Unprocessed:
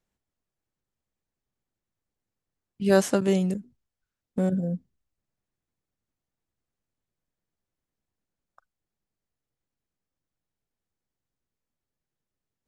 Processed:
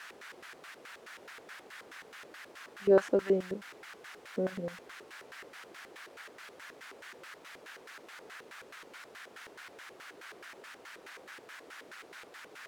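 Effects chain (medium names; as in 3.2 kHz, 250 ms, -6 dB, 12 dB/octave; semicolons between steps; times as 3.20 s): word length cut 6-bit, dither triangular; LFO band-pass square 4.7 Hz 430–1600 Hz; trim +1 dB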